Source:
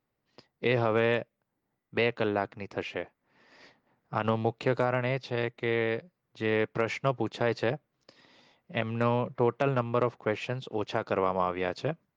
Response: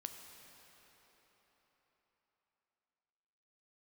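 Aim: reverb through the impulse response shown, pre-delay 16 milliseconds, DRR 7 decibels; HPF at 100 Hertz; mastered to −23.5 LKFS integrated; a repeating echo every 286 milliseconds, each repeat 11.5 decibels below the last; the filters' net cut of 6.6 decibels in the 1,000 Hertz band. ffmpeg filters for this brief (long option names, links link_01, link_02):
-filter_complex "[0:a]highpass=100,equalizer=frequency=1000:width_type=o:gain=-9,aecho=1:1:286|572|858:0.266|0.0718|0.0194,asplit=2[link_01][link_02];[1:a]atrim=start_sample=2205,adelay=16[link_03];[link_02][link_03]afir=irnorm=-1:irlink=0,volume=-4dB[link_04];[link_01][link_04]amix=inputs=2:normalize=0,volume=7.5dB"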